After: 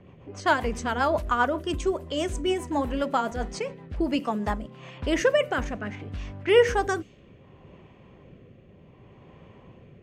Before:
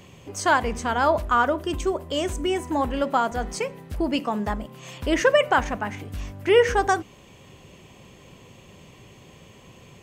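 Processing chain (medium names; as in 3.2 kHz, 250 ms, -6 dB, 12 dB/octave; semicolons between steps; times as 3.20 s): rotary cabinet horn 7.5 Hz, later 0.65 Hz, at 3.97 s; level-controlled noise filter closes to 1.4 kHz, open at -23.5 dBFS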